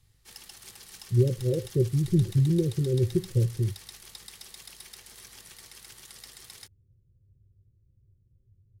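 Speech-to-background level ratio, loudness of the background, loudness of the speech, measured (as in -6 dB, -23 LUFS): 19.5 dB, -45.5 LUFS, -26.0 LUFS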